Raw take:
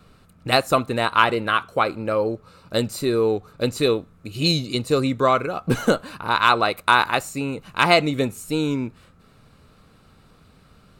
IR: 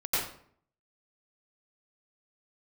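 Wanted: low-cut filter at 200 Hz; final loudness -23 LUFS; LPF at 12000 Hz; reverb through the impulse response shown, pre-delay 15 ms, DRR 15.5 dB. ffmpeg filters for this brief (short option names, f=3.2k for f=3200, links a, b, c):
-filter_complex "[0:a]highpass=200,lowpass=12k,asplit=2[a][b];[1:a]atrim=start_sample=2205,adelay=15[c];[b][c]afir=irnorm=-1:irlink=0,volume=-25dB[d];[a][d]amix=inputs=2:normalize=0,volume=-1.5dB"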